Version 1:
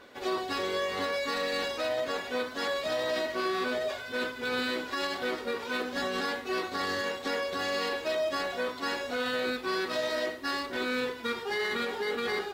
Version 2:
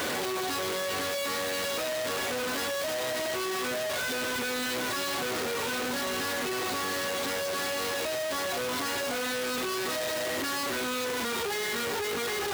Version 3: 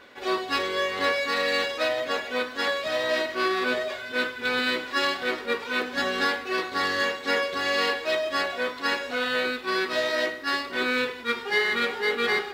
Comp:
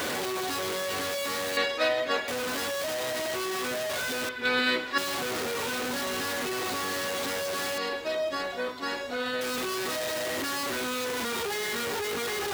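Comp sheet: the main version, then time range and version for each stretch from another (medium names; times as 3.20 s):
2
1.57–2.28 s: from 3
4.29–4.98 s: from 3
7.78–9.41 s: from 1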